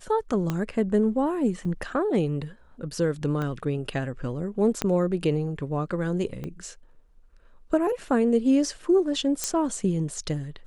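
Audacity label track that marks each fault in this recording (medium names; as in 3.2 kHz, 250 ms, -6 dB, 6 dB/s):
0.500000	0.500000	pop -14 dBFS
1.650000	1.650000	dropout 3.5 ms
3.420000	3.420000	pop -19 dBFS
4.820000	4.820000	pop -10 dBFS
6.440000	6.440000	pop -22 dBFS
9.440000	9.440000	pop -10 dBFS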